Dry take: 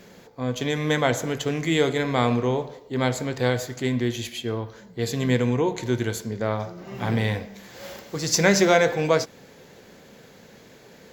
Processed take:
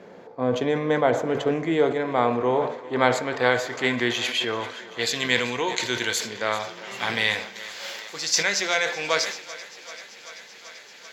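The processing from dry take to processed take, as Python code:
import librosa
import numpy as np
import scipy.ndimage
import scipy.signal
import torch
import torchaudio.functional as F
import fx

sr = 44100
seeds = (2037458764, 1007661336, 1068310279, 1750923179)

y = fx.filter_sweep_bandpass(x, sr, from_hz=620.0, to_hz=3400.0, start_s=1.72, end_s=5.54, q=0.74)
y = fx.rider(y, sr, range_db=5, speed_s=0.5)
y = fx.echo_thinned(y, sr, ms=387, feedback_pct=81, hz=290.0, wet_db=-18.0)
y = fx.sustainer(y, sr, db_per_s=92.0)
y = F.gain(torch.from_numpy(y), 6.0).numpy()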